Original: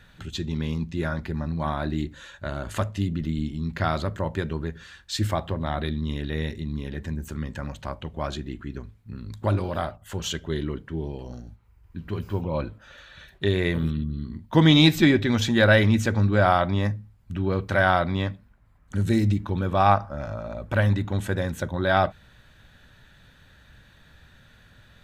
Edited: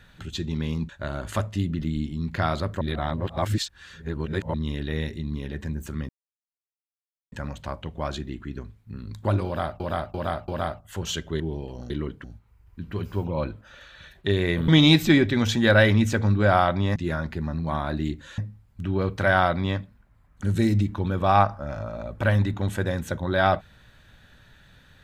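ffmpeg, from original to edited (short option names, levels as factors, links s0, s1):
-filter_complex "[0:a]asplit=14[s0][s1][s2][s3][s4][s5][s6][s7][s8][s9][s10][s11][s12][s13];[s0]atrim=end=0.892[s14];[s1]atrim=start=2.308:end=4.232[s15];[s2]atrim=start=4.228:end=5.962,asetpts=PTS-STARTPTS,areverse[s16];[s3]atrim=start=5.958:end=7.51,asetpts=PTS-STARTPTS,afade=t=out:st=1.548:d=0.004:c=hsin,apad=pad_dur=1.23[s17];[s4]atrim=start=7.51:end=9.992,asetpts=PTS-STARTPTS,afade=t=in:d=0.004:c=hsin[s18];[s5]atrim=start=9.648:end=9.992[s19];[s6]atrim=start=9.648:end=9.992[s20];[s7]atrim=start=9.648:end=10.572[s21];[s8]atrim=start=10.908:end=11.412[s22];[s9]atrim=start=10.568:end=10.912[s23];[s10]atrim=start=11.408:end=13.852[s24];[s11]atrim=start=14.608:end=16.892[s25];[s12]atrim=start=0.888:end=2.312[s26];[s13]atrim=start=16.888[s27];[s14][s15]acrossfade=d=0.004:c1=hsin:c2=hsin[s28];[s28][s16]acrossfade=d=0.004:c1=hsin:c2=hsin[s29];[s17][s18]concat=n=2:v=0:a=1[s30];[s29][s30]acrossfade=d=0.004:c1=hsin:c2=hsin[s31];[s31][s19]acrossfade=d=0.004:c1=hsin:c2=hsin[s32];[s32][s20]acrossfade=d=0.004:c1=hsin:c2=hsin[s33];[s33][s21]acrossfade=d=0.004:c1=hsin:c2=hsin[s34];[s34][s22]acrossfade=d=0.004:c1=hsin:c2=hsin[s35];[s35][s23]acrossfade=d=0.004:c1=hsin:c2=hsin[s36];[s36][s24]acrossfade=d=0.004:c1=hsin:c2=hsin[s37];[s37][s25]acrossfade=d=0.004:c1=hsin:c2=hsin[s38];[s38][s26]acrossfade=d=0.004:c1=hsin:c2=hsin[s39];[s39][s27]acrossfade=d=0.004:c1=hsin:c2=hsin"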